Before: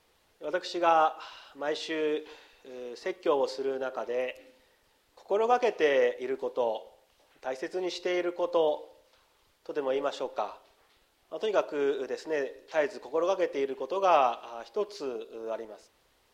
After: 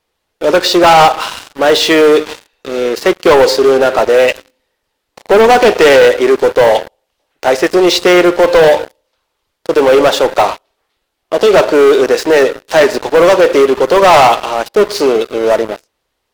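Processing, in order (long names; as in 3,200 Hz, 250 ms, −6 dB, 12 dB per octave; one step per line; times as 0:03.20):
leveller curve on the samples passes 5
level +8 dB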